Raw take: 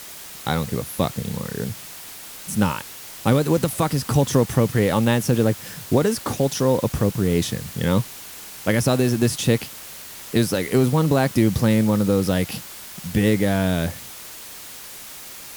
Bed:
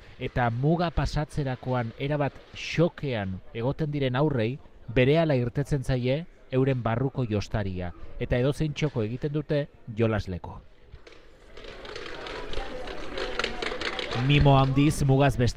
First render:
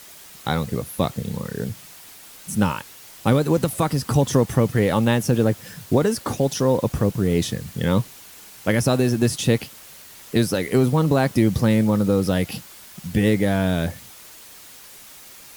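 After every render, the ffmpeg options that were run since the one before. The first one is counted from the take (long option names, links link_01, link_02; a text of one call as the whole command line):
ffmpeg -i in.wav -af "afftdn=noise_reduction=6:noise_floor=-38" out.wav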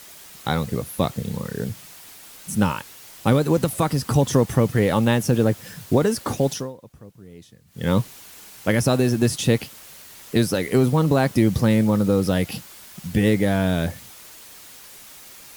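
ffmpeg -i in.wav -filter_complex "[0:a]asplit=3[link_01][link_02][link_03];[link_01]atrim=end=6.77,asetpts=PTS-STARTPTS,afade=type=out:start_time=6.52:duration=0.25:curve=qua:silence=0.0668344[link_04];[link_02]atrim=start=6.77:end=7.64,asetpts=PTS-STARTPTS,volume=-23.5dB[link_05];[link_03]atrim=start=7.64,asetpts=PTS-STARTPTS,afade=type=in:duration=0.25:curve=qua:silence=0.0668344[link_06];[link_04][link_05][link_06]concat=n=3:v=0:a=1" out.wav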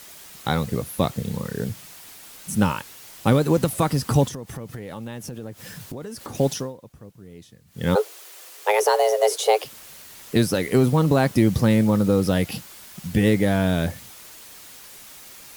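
ffmpeg -i in.wav -filter_complex "[0:a]asettb=1/sr,asplit=3[link_01][link_02][link_03];[link_01]atrim=end=4.284[link_04];[link_02]atrim=start=4.28:end=6.35,asetpts=PTS-STARTPTS,afade=type=in:duration=0.004:curve=qsin,afade=type=out:start_time=2.066:duration=0.004:curve=qsin,acompressor=threshold=-32dB:ratio=6:attack=3.2:release=140:knee=1:detection=peak[link_05];[link_03]atrim=start=6.346[link_06];[link_04][link_05]acrossfade=duration=0.004:curve1=hsin:curve2=qsin[link_07];[link_07][link_06]acrossfade=duration=0.004:curve1=qsin:curve2=hsin,asplit=3[link_08][link_09][link_10];[link_08]afade=type=out:start_time=7.94:duration=0.02[link_11];[link_09]afreqshift=310,afade=type=in:start_time=7.94:duration=0.02,afade=type=out:start_time=9.64:duration=0.02[link_12];[link_10]afade=type=in:start_time=9.64:duration=0.02[link_13];[link_11][link_12][link_13]amix=inputs=3:normalize=0" out.wav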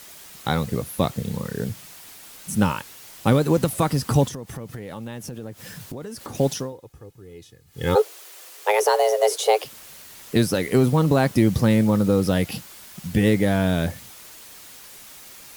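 ffmpeg -i in.wav -filter_complex "[0:a]asettb=1/sr,asplit=3[link_01][link_02][link_03];[link_01]atrim=end=6.724[link_04];[link_02]atrim=start=6.72:end=8.02,asetpts=PTS-STARTPTS,afade=type=in:duration=0.004:curve=qsin,afade=type=out:start_time=1.296:duration=0.004:curve=qsin,aecho=1:1:2.4:0.62,atrim=end_sample=57330[link_05];[link_03]atrim=start=8.016[link_06];[link_04][link_05]acrossfade=duration=0.004:curve1=hsin:curve2=qsin[link_07];[link_07][link_06]acrossfade=duration=0.004:curve1=qsin:curve2=hsin" out.wav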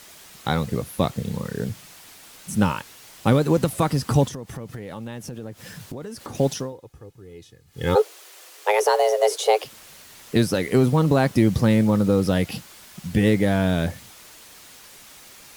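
ffmpeg -i in.wav -af "highshelf=frequency=11000:gain=-7" out.wav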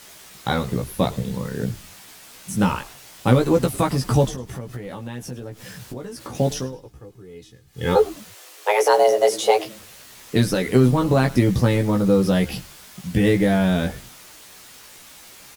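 ffmpeg -i in.wav -filter_complex "[0:a]asplit=2[link_01][link_02];[link_02]adelay=16,volume=-4dB[link_03];[link_01][link_03]amix=inputs=2:normalize=0,asplit=4[link_04][link_05][link_06][link_07];[link_05]adelay=103,afreqshift=-110,volume=-19dB[link_08];[link_06]adelay=206,afreqshift=-220,volume=-28.4dB[link_09];[link_07]adelay=309,afreqshift=-330,volume=-37.7dB[link_10];[link_04][link_08][link_09][link_10]amix=inputs=4:normalize=0" out.wav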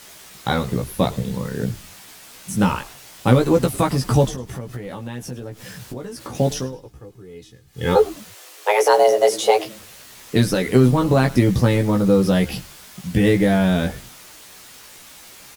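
ffmpeg -i in.wav -af "volume=1.5dB,alimiter=limit=-2dB:level=0:latency=1" out.wav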